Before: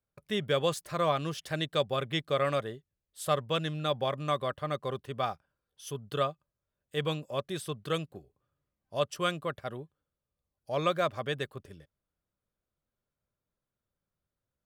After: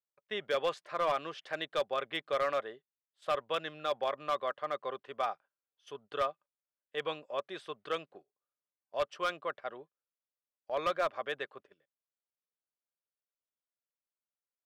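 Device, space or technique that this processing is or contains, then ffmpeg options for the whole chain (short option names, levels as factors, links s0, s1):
walkie-talkie: -af "highpass=510,lowpass=2800,asoftclip=type=hard:threshold=0.0631,agate=range=0.224:threshold=0.002:ratio=16:detection=peak"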